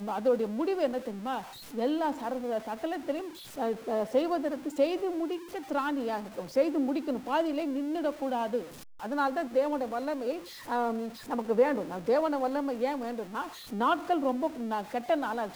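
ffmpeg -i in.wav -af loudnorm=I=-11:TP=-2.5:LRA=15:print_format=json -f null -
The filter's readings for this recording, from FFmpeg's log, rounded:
"input_i" : "-31.0",
"input_tp" : "-14.0",
"input_lra" : "1.2",
"input_thresh" : "-41.1",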